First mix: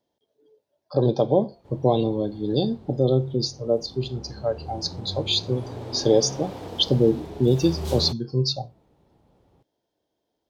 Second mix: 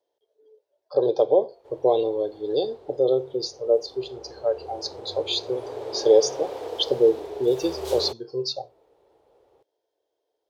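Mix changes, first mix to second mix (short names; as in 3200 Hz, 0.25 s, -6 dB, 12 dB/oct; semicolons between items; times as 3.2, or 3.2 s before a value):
speech -3.5 dB; master: add resonant low shelf 300 Hz -13 dB, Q 3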